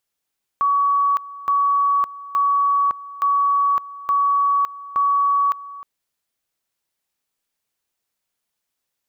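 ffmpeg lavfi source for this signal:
-f lavfi -i "aevalsrc='pow(10,(-14.5-18*gte(mod(t,0.87),0.56))/20)*sin(2*PI*1130*t)':d=5.22:s=44100"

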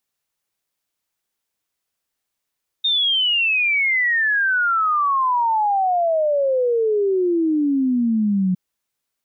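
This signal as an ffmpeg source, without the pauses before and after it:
-f lavfi -i "aevalsrc='0.168*clip(min(t,5.71-t)/0.01,0,1)*sin(2*PI*3700*5.71/log(180/3700)*(exp(log(180/3700)*t/5.71)-1))':d=5.71:s=44100"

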